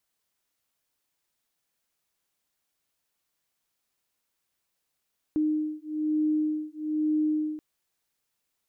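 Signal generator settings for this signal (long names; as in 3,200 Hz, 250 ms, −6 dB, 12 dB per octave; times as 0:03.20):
two tones that beat 306 Hz, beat 1.1 Hz, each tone −27.5 dBFS 2.23 s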